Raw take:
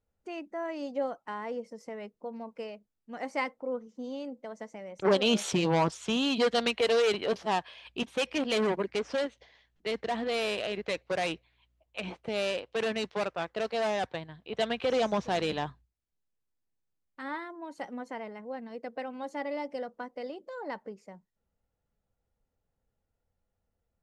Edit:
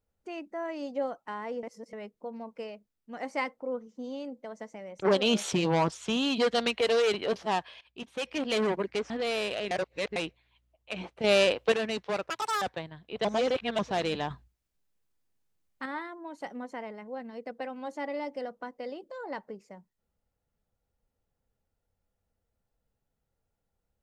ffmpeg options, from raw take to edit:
-filter_complex "[0:a]asplit=15[a][b][c][d][e][f][g][h][i][j][k][l][m][n][o];[a]atrim=end=1.632[p];[b]atrim=start=1.628:end=1.932,asetpts=PTS-STARTPTS,areverse[q];[c]atrim=start=1.928:end=7.81,asetpts=PTS-STARTPTS,afade=t=out:st=5.878:d=0.004:c=hsin:silence=0.141254[r];[d]atrim=start=7.81:end=9.102,asetpts=PTS-STARTPTS,afade=t=in:d=0.73:silence=0.141254[s];[e]atrim=start=10.168:end=10.782[t];[f]atrim=start=10.778:end=11.232,asetpts=PTS-STARTPTS,areverse[u];[g]atrim=start=11.228:end=12.312[v];[h]atrim=start=12.308:end=12.792,asetpts=PTS-STARTPTS,volume=8.5dB[w];[i]atrim=start=12.788:end=13.374[x];[j]atrim=start=13.37:end=13.99,asetpts=PTS-STARTPTS,asetrate=86436,aresample=44100[y];[k]atrim=start=13.986:end=14.622[z];[l]atrim=start=14.618:end=15.162,asetpts=PTS-STARTPTS,areverse[aa];[m]atrim=start=15.158:end=15.682[ab];[n]atrim=start=15.678:end=17.232,asetpts=PTS-STARTPTS,volume=6dB[ac];[o]atrim=start=17.228[ad];[p][q]acrossfade=d=0.004:c1=hsin:c2=hsin[ae];[r][s]concat=n=2:v=0:a=1[af];[ae][af]acrossfade=d=0.004:c1=hsin:c2=hsin[ag];[ag][t]acrossfade=d=0.004:c1=hsin:c2=hsin[ah];[ah][u]acrossfade=d=0.004:c1=hsin:c2=hsin[ai];[ai][v]acrossfade=d=0.004:c1=hsin:c2=hsin[aj];[aj][w]acrossfade=d=0.004:c1=hsin:c2=hsin[ak];[ak][x]acrossfade=d=0.004:c1=hsin:c2=hsin[al];[al][y]acrossfade=d=0.004:c1=hsin:c2=hsin[am];[am][z]acrossfade=d=0.004:c1=hsin:c2=hsin[an];[an][aa]acrossfade=d=0.004:c1=hsin:c2=hsin[ao];[ao][ab]acrossfade=d=0.004:c1=hsin:c2=hsin[ap];[ap][ac]acrossfade=d=0.004:c1=hsin:c2=hsin[aq];[aq][ad]acrossfade=d=0.004:c1=hsin:c2=hsin"

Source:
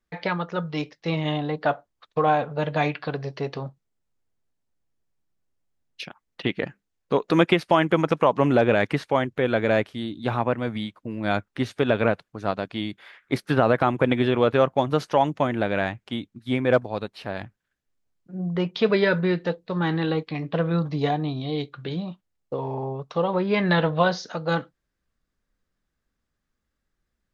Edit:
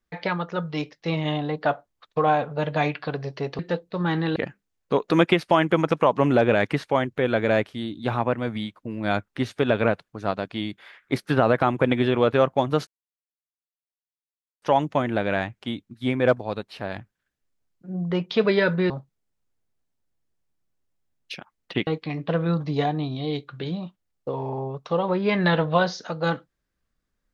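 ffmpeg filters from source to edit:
-filter_complex "[0:a]asplit=6[a][b][c][d][e][f];[a]atrim=end=3.592[g];[b]atrim=start=19.348:end=20.122[h];[c]atrim=start=6.558:end=15.07,asetpts=PTS-STARTPTS,afade=t=out:st=8.508:d=0.004:c=hsin,apad=pad_dur=1.75[i];[d]atrim=start=15.07:end=19.352,asetpts=PTS-STARTPTS,afade=t=in:d=0.004:c=hsin[j];[e]atrim=start=3.588:end=6.562[k];[f]atrim=start=20.118[l];[g][h]acrossfade=d=0.004:c1=hsin:c2=hsin[m];[i][j]concat=n=2:v=0:a=1[n];[m][n]acrossfade=d=0.004:c1=hsin:c2=hsin[o];[o][k]acrossfade=d=0.004:c1=hsin:c2=hsin[p];[p][l]acrossfade=d=0.004:c1=hsin:c2=hsin"

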